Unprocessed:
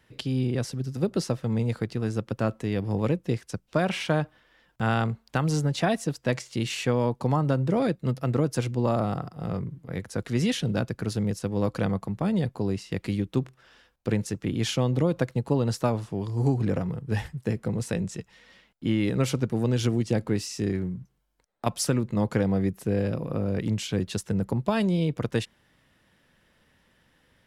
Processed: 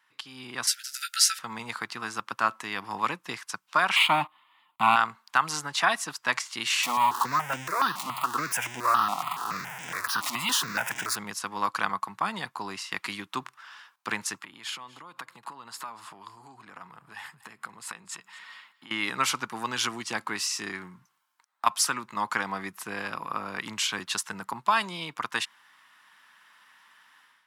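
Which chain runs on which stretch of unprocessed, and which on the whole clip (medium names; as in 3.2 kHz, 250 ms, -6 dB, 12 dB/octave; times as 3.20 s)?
0.67–1.39 s: brick-wall FIR high-pass 1.3 kHz + tilt EQ +4 dB/octave + doubling 16 ms -6 dB
3.96–4.96 s: peaking EQ 310 Hz +10 dB 1.3 oct + waveshaping leveller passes 2 + static phaser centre 1.6 kHz, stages 6
6.83–11.16 s: jump at every zero crossing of -28 dBFS + stepped phaser 7.1 Hz 430–4300 Hz
14.39–18.91 s: band-stop 5.9 kHz, Q 5.4 + compression 10:1, threshold -37 dBFS + delay 239 ms -21 dB
whole clip: high-pass 300 Hz 12 dB/octave; level rider gain up to 11.5 dB; resonant low shelf 730 Hz -12.5 dB, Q 3; trim -4.5 dB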